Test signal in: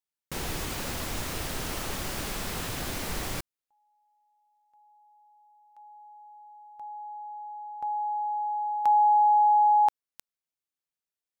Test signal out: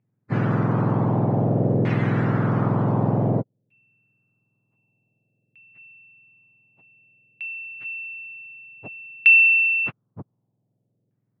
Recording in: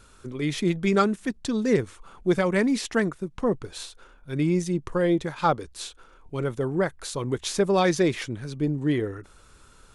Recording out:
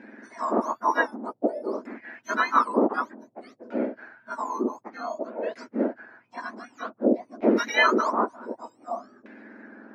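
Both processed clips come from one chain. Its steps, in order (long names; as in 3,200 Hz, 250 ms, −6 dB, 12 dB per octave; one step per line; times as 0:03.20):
frequency axis turned over on the octave scale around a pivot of 1,500 Hz
auto-filter low-pass saw down 0.54 Hz 500–2,300 Hz
level +6 dB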